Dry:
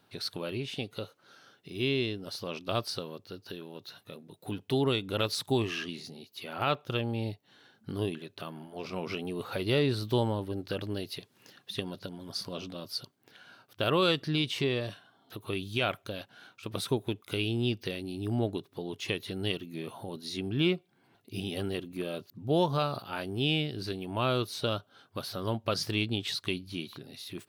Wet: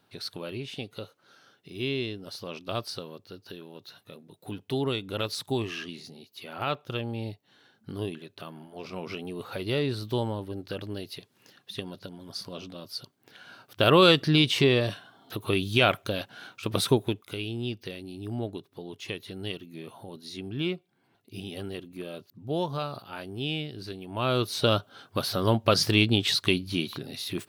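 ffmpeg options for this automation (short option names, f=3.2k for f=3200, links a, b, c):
-af "volume=19.5dB,afade=t=in:st=12.96:d=0.94:silence=0.354813,afade=t=out:st=16.86:d=0.49:silence=0.281838,afade=t=in:st=24.09:d=0.68:silence=0.266073"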